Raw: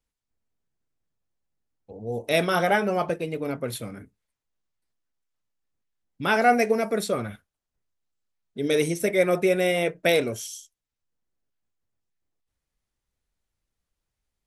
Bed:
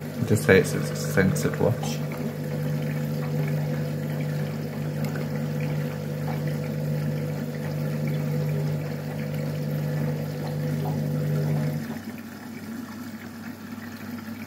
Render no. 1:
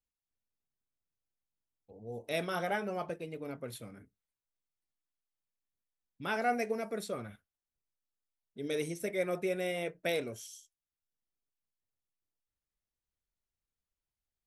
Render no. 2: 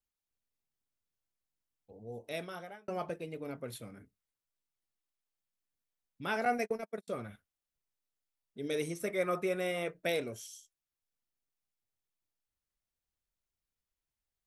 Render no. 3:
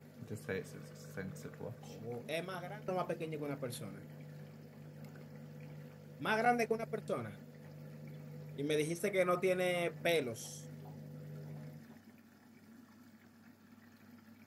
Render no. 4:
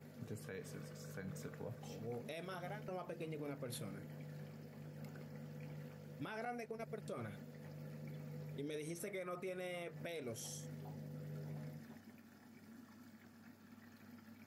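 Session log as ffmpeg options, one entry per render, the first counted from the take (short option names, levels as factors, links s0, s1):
-af "volume=0.251"
-filter_complex "[0:a]asettb=1/sr,asplit=3[s0][s1][s2];[s0]atrim=end=6.454[s3];[s1]atrim=start=6.45:end=7.08,asetpts=PTS-STARTPTS,afade=t=in:d=0.004:c=qsin,afade=t=out:st=0.626:d=0.004:c=qsin,agate=range=0.00562:threshold=0.0158:ratio=16:release=100:detection=peak[s4];[s2]atrim=start=7.076[s5];[s3][s4]acrossfade=d=0.004:c1=hsin:c2=qsin[s6];[s6][s5]acrossfade=d=0.004:c1=qsin:c2=hsin,asettb=1/sr,asplit=3[s7][s8][s9];[s7]atrim=end=8.884[s10];[s8]atrim=start=8.88:end=9.93,asetpts=PTS-STARTPTS,afade=t=in:d=0.004:c=qsin,afade=t=out:st=1.046:d=0.004:c=qsin,equalizer=f=1200:t=o:w=0.38:g=12[s11];[s9]atrim=start=9.926[s12];[s10][s11]acrossfade=d=0.004:c1=hsin:c2=qsin[s13];[s13][s12]acrossfade=d=0.004:c1=qsin:c2=hsin,asplit=2[s14][s15];[s14]atrim=end=2.88,asetpts=PTS-STARTPTS,afade=t=out:st=1.94:d=0.94[s16];[s15]atrim=start=2.88,asetpts=PTS-STARTPTS,afade=t=in:d=0.004:c=hsin[s17];[s16][s17]concat=n=2:v=0:a=1"
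-filter_complex "[1:a]volume=0.0668[s0];[0:a][s0]amix=inputs=2:normalize=0"
-af "acompressor=threshold=0.0126:ratio=4,alimiter=level_in=3.98:limit=0.0631:level=0:latency=1:release=99,volume=0.251"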